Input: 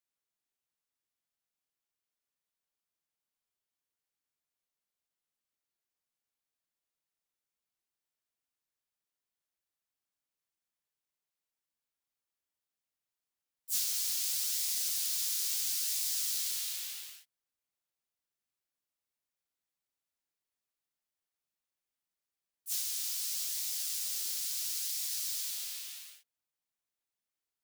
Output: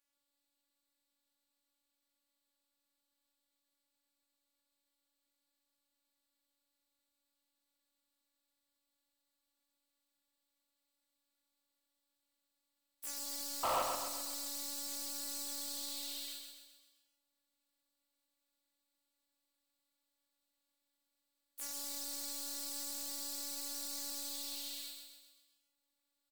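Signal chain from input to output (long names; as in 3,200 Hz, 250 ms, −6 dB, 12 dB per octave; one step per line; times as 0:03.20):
high-shelf EQ 6,400 Hz −4.5 dB
downward compressor, threshold −43 dBFS, peak gain reduction 11 dB
phases set to zero 271 Hz
sound drawn into the spectrogram noise, 0:14.31–0:14.52, 470–1,300 Hz −39 dBFS
speed change +5%
hard clipping −39.5 dBFS, distortion −5 dB
repeating echo 130 ms, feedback 51%, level −5 dB
level +8.5 dB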